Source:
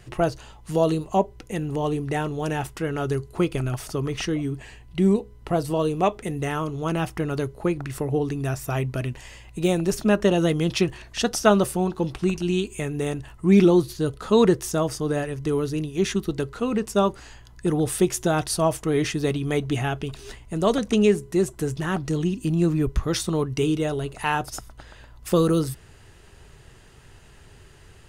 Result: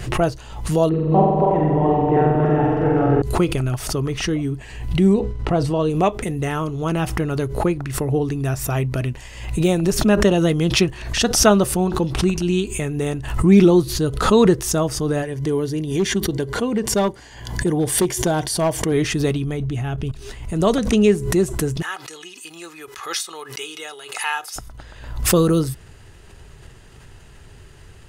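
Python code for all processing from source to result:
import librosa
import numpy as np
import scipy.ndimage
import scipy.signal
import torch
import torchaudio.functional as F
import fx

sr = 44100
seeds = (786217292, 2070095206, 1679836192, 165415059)

y = fx.chain(x, sr, fx.reverse_delay_fb(ms=142, feedback_pct=63, wet_db=-2.0),
    fx.lowpass(hz=1200.0, slope=12),
    fx.room_flutter(wall_m=7.8, rt60_s=1.2), at=(0.89, 3.22))
y = fx.chain(y, sr, fx.air_absorb(metres=72.0),
    fx.sustainer(db_per_s=66.0), at=(5.15, 5.9))
y = fx.chain(y, sr, fx.notch_comb(f0_hz=1300.0),
    fx.overload_stage(gain_db=16.0), at=(15.22, 18.92))
y = fx.chain(y, sr, fx.low_shelf(hz=200.0, db=9.5),
    fx.level_steps(step_db=14), at=(19.44, 20.22))
y = fx.chain(y, sr, fx.highpass(hz=1200.0, slope=12),
    fx.comb(ms=2.4, depth=0.46), at=(21.82, 24.56))
y = fx.low_shelf(y, sr, hz=180.0, db=3.5)
y = fx.pre_swell(y, sr, db_per_s=75.0)
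y = y * 10.0 ** (2.5 / 20.0)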